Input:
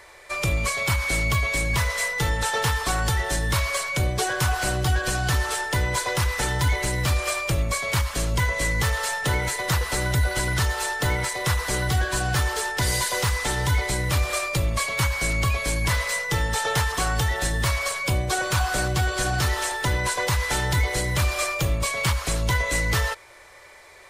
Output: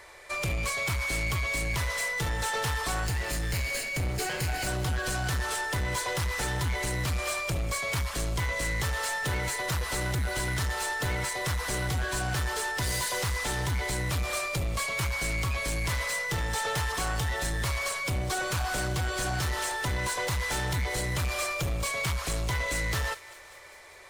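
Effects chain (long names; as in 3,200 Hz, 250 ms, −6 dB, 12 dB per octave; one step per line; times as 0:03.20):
0:03.06–0:04.67: lower of the sound and its delayed copy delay 0.43 ms
soft clipping −23.5 dBFS, distortion −11 dB
feedback echo with a high-pass in the loop 198 ms, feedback 71%, high-pass 1,200 Hz, level −17 dB
level −2 dB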